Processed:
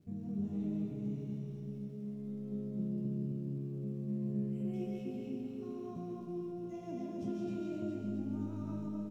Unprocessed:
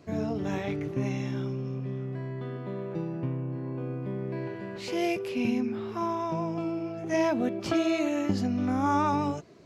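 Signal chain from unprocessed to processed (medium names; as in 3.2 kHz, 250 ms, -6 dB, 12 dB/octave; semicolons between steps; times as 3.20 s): band-stop 4.4 kHz, Q 8.8; spectral selection erased 4.46–5.02 s, 3–6.8 kHz; FFT filter 180 Hz 0 dB, 890 Hz -24 dB, 1.6 kHz -29 dB, 3.2 kHz -20 dB; compression, threshold -35 dBFS, peak gain reduction 10.5 dB; crackle 330 per s -62 dBFS; wide varispeed 1.06×; feedback comb 200 Hz, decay 0.52 s, harmonics all, mix 80%; on a send: feedback delay 260 ms, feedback 48%, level -4.5 dB; on the sum: algorithmic reverb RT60 1.3 s, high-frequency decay 0.7×, pre-delay 100 ms, DRR -2 dB; trim +6 dB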